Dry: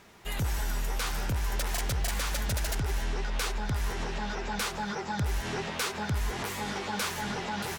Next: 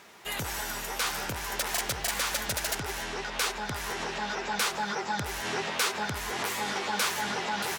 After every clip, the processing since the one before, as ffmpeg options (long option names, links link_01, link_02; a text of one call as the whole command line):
ffmpeg -i in.wav -af "highpass=frequency=450:poles=1,volume=4.5dB" out.wav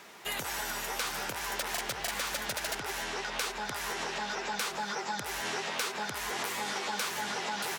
ffmpeg -i in.wav -filter_complex "[0:a]equalizer=frequency=68:width_type=o:width=1.3:gain=-8,acrossover=split=430|4900[link_01][link_02][link_03];[link_01]acompressor=threshold=-47dB:ratio=4[link_04];[link_02]acompressor=threshold=-35dB:ratio=4[link_05];[link_03]acompressor=threshold=-40dB:ratio=4[link_06];[link_04][link_05][link_06]amix=inputs=3:normalize=0,volume=1.5dB" out.wav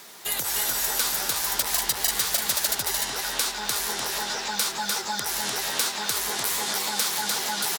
ffmpeg -i in.wav -filter_complex "[0:a]aexciter=amount=3.4:drive=2.6:freq=3600,acrusher=bits=8:mix=0:aa=0.000001,asplit=2[link_01][link_02];[link_02]aecho=0:1:299:0.708[link_03];[link_01][link_03]amix=inputs=2:normalize=0,volume=1.5dB" out.wav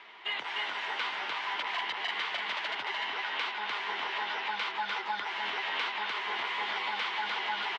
ffmpeg -i in.wav -af "highpass=360,equalizer=frequency=540:width_type=q:width=4:gain=-5,equalizer=frequency=1000:width_type=q:width=4:gain=7,equalizer=frequency=2100:width_type=q:width=4:gain=8,equalizer=frequency=3000:width_type=q:width=4:gain=8,lowpass=frequency=3100:width=0.5412,lowpass=frequency=3100:width=1.3066,volume=-5dB" out.wav